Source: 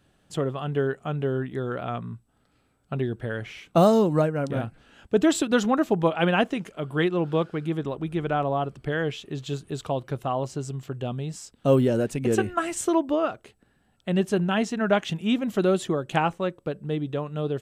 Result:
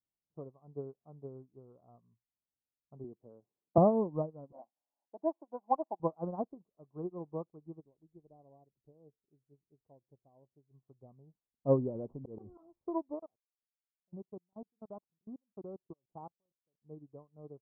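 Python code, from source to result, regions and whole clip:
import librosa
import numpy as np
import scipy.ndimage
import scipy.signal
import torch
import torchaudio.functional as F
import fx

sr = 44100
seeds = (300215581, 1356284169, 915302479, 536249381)

y = fx.chain(x, sr, fx.highpass(hz=240.0, slope=12),
    fx.low_shelf(hz=430.0, db=8.0), at=(3.04, 3.78))
y = fx.chain(y, sr, fx.highpass(hz=380.0, slope=24),
    fx.tilt_shelf(db=4.5, hz=1300.0),
    fx.comb(ms=1.2, depth=0.88), at=(4.52, 6.0))
y = fx.chain(y, sr, fx.gaussian_blur(sigma=12.0),
    fx.low_shelf(hz=300.0, db=-5.5), at=(7.8, 10.71))
y = fx.chain(y, sr, fx.lowpass(hz=3500.0, slope=24),
    fx.auto_swell(attack_ms=200.0),
    fx.env_flatten(amount_pct=70), at=(11.95, 12.63))
y = fx.chain(y, sr, fx.law_mismatch(coded='A'),
    fx.level_steps(step_db=24), at=(13.19, 16.84))
y = scipy.signal.sosfilt(scipy.signal.butter(12, 1100.0, 'lowpass', fs=sr, output='sos'), y)
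y = fx.upward_expand(y, sr, threshold_db=-37.0, expansion=2.5)
y = y * 10.0 ** (-5.0 / 20.0)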